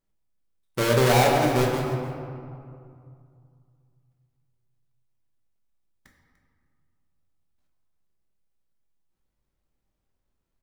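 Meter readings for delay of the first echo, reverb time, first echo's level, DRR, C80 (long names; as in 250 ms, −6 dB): 295 ms, 2.4 s, −15.5 dB, −1.5 dB, 3.0 dB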